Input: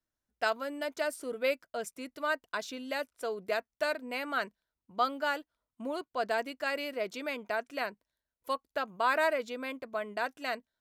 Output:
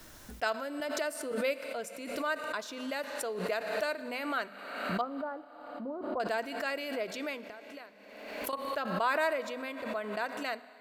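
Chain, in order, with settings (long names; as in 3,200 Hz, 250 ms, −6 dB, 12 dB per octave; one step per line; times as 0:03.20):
0:00.80–0:01.20: high-pass filter 150 Hz
mains-hum notches 50/100/150/200/250 Hz
0:05.01–0:06.20: Gaussian smoothing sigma 7.7 samples
0:07.41–0:08.53: downward compressor 12 to 1, threshold −43 dBFS, peak gain reduction 15.5 dB
four-comb reverb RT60 3.6 s, combs from 29 ms, DRR 15 dB
background raised ahead of every attack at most 44 dB per second
level −2 dB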